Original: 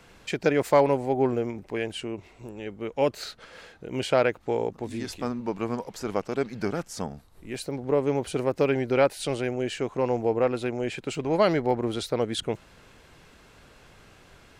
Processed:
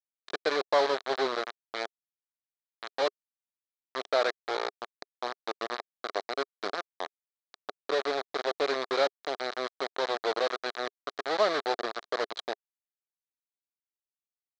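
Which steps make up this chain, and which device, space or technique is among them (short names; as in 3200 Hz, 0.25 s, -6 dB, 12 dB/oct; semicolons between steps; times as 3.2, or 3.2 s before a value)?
hand-held game console (bit-crush 4-bit; speaker cabinet 410–5200 Hz, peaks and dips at 410 Hz +4 dB, 690 Hz +5 dB, 1200 Hz +6 dB, 1700 Hz +4 dB, 2700 Hz -6 dB, 4000 Hz +9 dB); gain -7 dB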